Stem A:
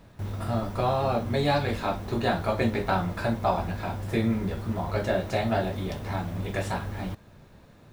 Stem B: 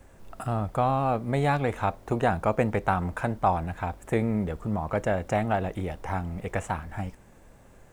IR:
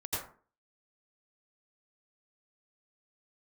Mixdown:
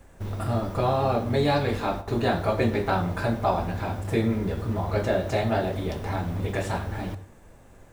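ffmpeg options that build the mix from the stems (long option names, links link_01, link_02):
-filter_complex "[0:a]equalizer=frequency=370:width=1.5:gain=3.5,volume=-0.5dB,asplit=2[link_01][link_02];[link_02]volume=-18.5dB[link_03];[1:a]acompressor=threshold=-34dB:ratio=6,volume=-0.5dB,asplit=3[link_04][link_05][link_06];[link_05]volume=-10.5dB[link_07];[link_06]apad=whole_len=349662[link_08];[link_01][link_08]sidechaingate=range=-33dB:threshold=-48dB:ratio=16:detection=peak[link_09];[2:a]atrim=start_sample=2205[link_10];[link_03][link_07]amix=inputs=2:normalize=0[link_11];[link_11][link_10]afir=irnorm=-1:irlink=0[link_12];[link_09][link_04][link_12]amix=inputs=3:normalize=0"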